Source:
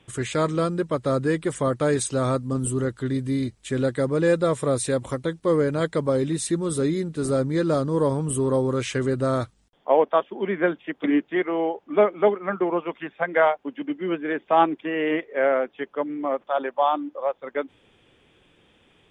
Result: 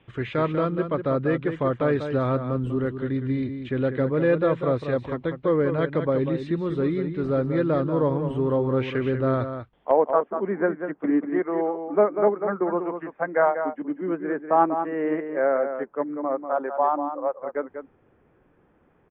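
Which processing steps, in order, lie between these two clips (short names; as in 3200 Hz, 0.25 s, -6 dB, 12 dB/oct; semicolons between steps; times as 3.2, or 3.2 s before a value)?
LPF 3000 Hz 24 dB/oct, from 9.91 s 1600 Hz; outdoor echo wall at 33 m, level -8 dB; gain -1 dB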